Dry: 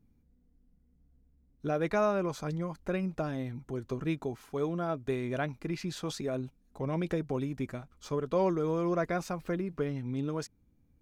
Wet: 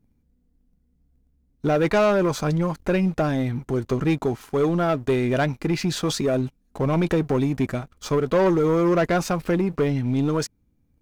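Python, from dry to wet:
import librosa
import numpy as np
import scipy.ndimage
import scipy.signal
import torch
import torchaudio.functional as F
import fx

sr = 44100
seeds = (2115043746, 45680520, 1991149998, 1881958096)

y = fx.leveller(x, sr, passes=2)
y = y * librosa.db_to_amplitude(5.5)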